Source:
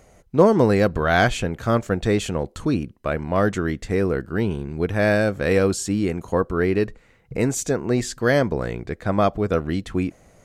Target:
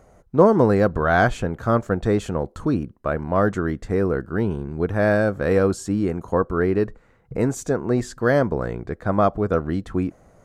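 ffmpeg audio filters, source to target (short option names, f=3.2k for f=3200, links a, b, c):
-af "highshelf=f=1.8k:t=q:w=1.5:g=-7"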